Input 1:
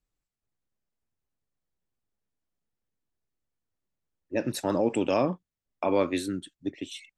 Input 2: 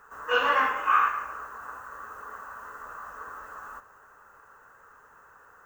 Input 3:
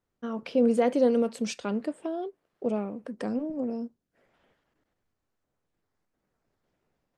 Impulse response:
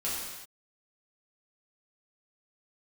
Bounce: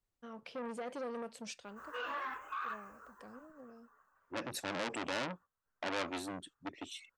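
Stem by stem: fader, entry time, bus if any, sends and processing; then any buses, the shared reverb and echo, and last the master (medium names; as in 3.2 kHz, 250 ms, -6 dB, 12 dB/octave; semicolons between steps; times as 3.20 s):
-6.0 dB, 0.00 s, no bus, no send, none
-5.5 dB, 1.65 s, bus A, no send, reverb removal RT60 1.1 s; detune thickener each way 21 cents; auto duck -21 dB, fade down 1.40 s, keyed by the first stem
1.50 s -9 dB -> 1.78 s -17 dB, 0.00 s, bus A, no send, peaking EQ 280 Hz -8.5 dB 1.6 oct
bus A: 0.0 dB, peak limiter -31 dBFS, peak gain reduction 11 dB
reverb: none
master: transformer saturation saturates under 3 kHz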